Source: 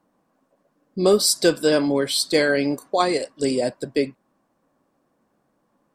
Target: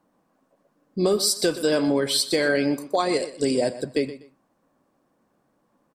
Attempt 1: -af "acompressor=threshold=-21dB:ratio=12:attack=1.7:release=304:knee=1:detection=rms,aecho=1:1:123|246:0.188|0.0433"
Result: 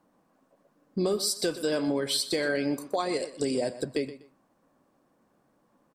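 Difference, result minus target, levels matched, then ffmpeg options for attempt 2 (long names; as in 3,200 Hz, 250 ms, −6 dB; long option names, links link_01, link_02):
downward compressor: peak gain reduction +6.5 dB
-af "acompressor=threshold=-14dB:ratio=12:attack=1.7:release=304:knee=1:detection=rms,aecho=1:1:123|246:0.188|0.0433"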